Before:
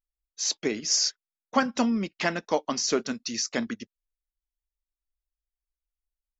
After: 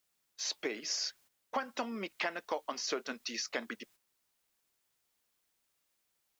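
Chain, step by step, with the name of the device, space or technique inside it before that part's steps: baby monitor (BPF 450–3700 Hz; compressor, threshold -32 dBFS, peak gain reduction 13 dB; white noise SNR 29 dB; gate -60 dBFS, range -9 dB)

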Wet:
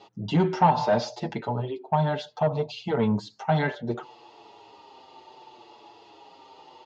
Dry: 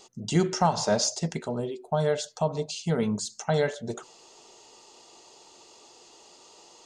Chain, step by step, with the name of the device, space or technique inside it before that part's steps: barber-pole flanger into a guitar amplifier (endless flanger 6.8 ms -0.66 Hz; soft clip -21 dBFS, distortion -15 dB; speaker cabinet 80–3800 Hz, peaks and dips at 81 Hz +8 dB, 120 Hz +5 dB, 300 Hz +4 dB, 870 Hz +9 dB); gain +5 dB

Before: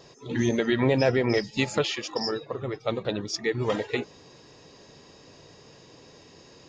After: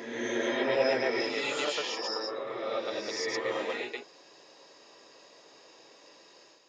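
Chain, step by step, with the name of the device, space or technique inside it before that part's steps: ghost voice (reverse; reverb RT60 1.6 s, pre-delay 97 ms, DRR -6.5 dB; reverse; HPF 510 Hz 12 dB/oct); gain -8 dB

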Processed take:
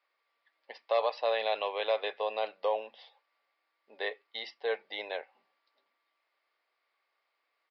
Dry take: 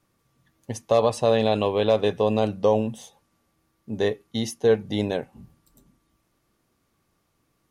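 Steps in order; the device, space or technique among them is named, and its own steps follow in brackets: musical greeting card (downsampling 11025 Hz; HPF 560 Hz 24 dB/oct; bell 2100 Hz +8 dB 0.47 oct); gain -6 dB

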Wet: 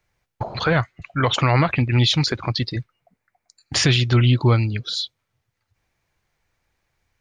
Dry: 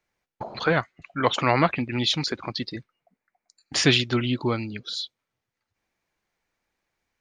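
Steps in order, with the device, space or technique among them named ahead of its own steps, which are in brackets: car stereo with a boomy subwoofer (resonant low shelf 160 Hz +8 dB, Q 1.5; limiter -14 dBFS, peak gain reduction 8.5 dB); gain +5.5 dB

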